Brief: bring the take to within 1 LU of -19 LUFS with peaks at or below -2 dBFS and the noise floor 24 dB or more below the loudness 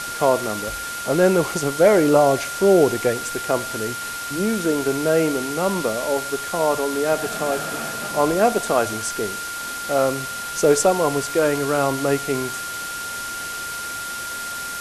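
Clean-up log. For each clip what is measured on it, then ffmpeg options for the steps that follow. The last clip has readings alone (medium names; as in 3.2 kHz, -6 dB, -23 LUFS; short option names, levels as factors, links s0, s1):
steady tone 1.4 kHz; tone level -29 dBFS; noise floor -30 dBFS; noise floor target -45 dBFS; loudness -21.0 LUFS; peak level -2.5 dBFS; loudness target -19.0 LUFS
-> -af "bandreject=f=1400:w=30"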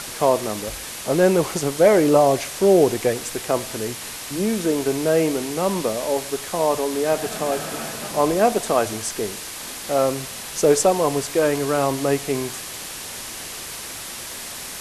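steady tone not found; noise floor -34 dBFS; noise floor target -46 dBFS
-> -af "afftdn=nr=12:nf=-34"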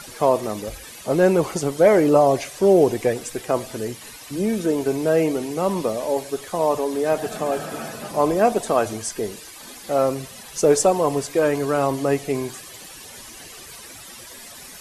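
noise floor -41 dBFS; noise floor target -45 dBFS
-> -af "afftdn=nr=6:nf=-41"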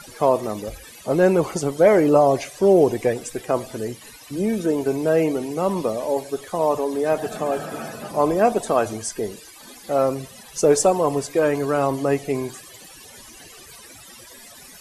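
noise floor -44 dBFS; noise floor target -45 dBFS
-> -af "afftdn=nr=6:nf=-44"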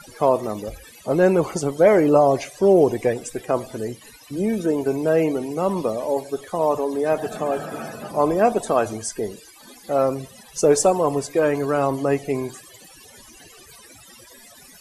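noise floor -47 dBFS; loudness -21.0 LUFS; peak level -2.5 dBFS; loudness target -19.0 LUFS
-> -af "volume=1.26,alimiter=limit=0.794:level=0:latency=1"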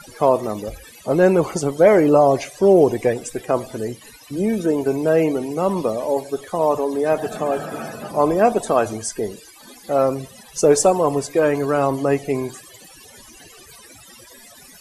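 loudness -19.0 LUFS; peak level -2.0 dBFS; noise floor -45 dBFS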